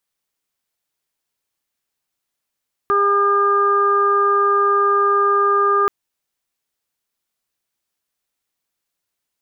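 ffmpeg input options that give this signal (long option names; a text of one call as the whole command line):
ffmpeg -f lavfi -i "aevalsrc='0.119*sin(2*PI*403*t)+0.0251*sin(2*PI*806*t)+0.2*sin(2*PI*1209*t)+0.0376*sin(2*PI*1612*t)':duration=2.98:sample_rate=44100" out.wav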